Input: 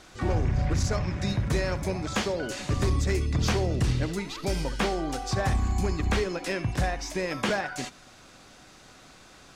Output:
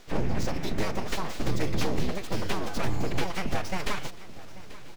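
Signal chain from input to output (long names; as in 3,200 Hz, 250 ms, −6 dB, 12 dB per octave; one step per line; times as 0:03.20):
running median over 5 samples
parametric band 1,200 Hz −8.5 dB 0.45 octaves
full-wave rectification
phase-vocoder stretch with locked phases 0.52×
repeating echo 837 ms, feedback 54%, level −17.5 dB
level +3 dB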